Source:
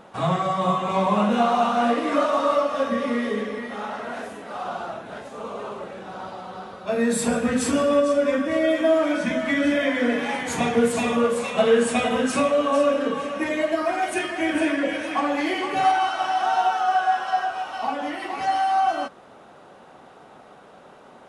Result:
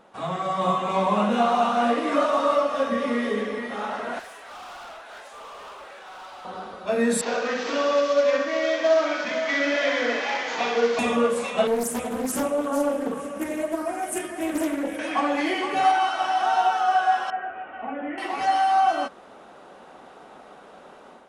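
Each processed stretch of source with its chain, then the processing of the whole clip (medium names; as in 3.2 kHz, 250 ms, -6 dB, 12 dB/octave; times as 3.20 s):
4.19–6.45 s: high-pass 860 Hz + hard clipper -40 dBFS
7.21–10.99 s: CVSD coder 32 kbps + high-pass 460 Hz + flutter echo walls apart 10.9 m, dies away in 0.61 s
11.67–14.99 s: FFT filter 160 Hz 0 dB, 4.1 kHz -14 dB, 11 kHz +10 dB + loudspeaker Doppler distortion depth 0.42 ms
17.30–18.18 s: inverse Chebyshev low-pass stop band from 4.3 kHz + peaking EQ 980 Hz -12.5 dB 0.98 oct
whole clip: level rider gain up to 8 dB; peaking EQ 120 Hz -12 dB 0.67 oct; trim -6.5 dB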